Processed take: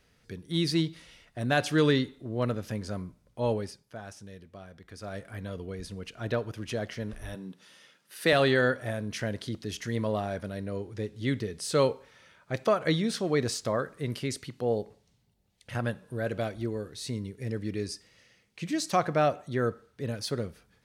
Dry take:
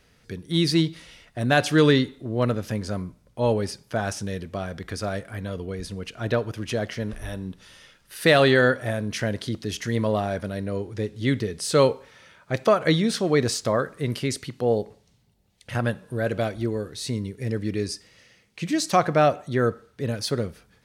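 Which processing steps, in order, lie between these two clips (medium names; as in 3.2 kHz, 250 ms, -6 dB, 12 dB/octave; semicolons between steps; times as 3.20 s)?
3.54–5.25 s: dip -10 dB, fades 0.45 s quadratic; 7.35–8.33 s: high-pass 160 Hz 24 dB/octave; trim -6 dB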